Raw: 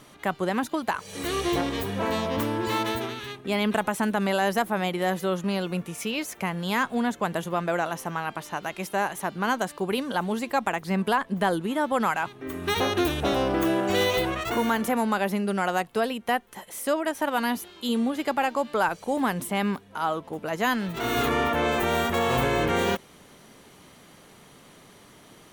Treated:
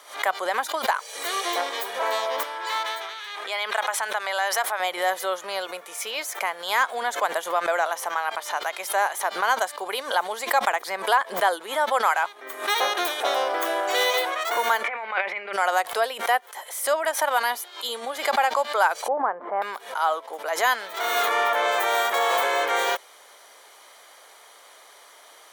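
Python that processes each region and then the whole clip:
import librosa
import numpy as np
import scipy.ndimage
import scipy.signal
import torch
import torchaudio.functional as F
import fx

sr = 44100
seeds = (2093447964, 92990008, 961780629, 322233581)

y = fx.chain(x, sr, fx.highpass(hz=1100.0, slope=6),
    fx.high_shelf(hz=8500.0, db=-12.0),
    fx.pre_swell(db_per_s=43.0), at=(2.43, 4.8))
y = fx.chain(y, sr, fx.over_compress(threshold_db=-29.0, ratio=-0.5),
    fx.lowpass_res(hz=2300.0, q=6.2), at=(14.84, 15.53))
y = fx.chain(y, sr, fx.lowpass(hz=1400.0, slope=24),
    fx.tilt_eq(slope=-1.5), at=(19.08, 19.62))
y = scipy.signal.sosfilt(scipy.signal.butter(4, 560.0, 'highpass', fs=sr, output='sos'), y)
y = fx.notch(y, sr, hz=2700.0, q=7.8)
y = fx.pre_swell(y, sr, db_per_s=130.0)
y = F.gain(torch.from_numpy(y), 4.5).numpy()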